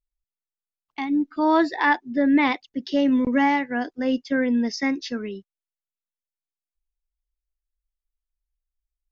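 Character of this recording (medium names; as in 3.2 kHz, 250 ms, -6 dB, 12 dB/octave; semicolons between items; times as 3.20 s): noise floor -93 dBFS; spectral tilt -2.5 dB/octave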